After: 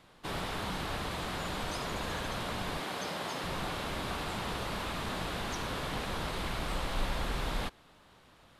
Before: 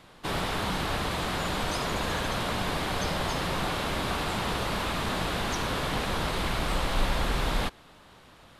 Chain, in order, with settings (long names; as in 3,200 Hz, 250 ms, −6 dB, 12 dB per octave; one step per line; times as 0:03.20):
0:02.80–0:03.44: high-pass filter 190 Hz 12 dB per octave
level −6.5 dB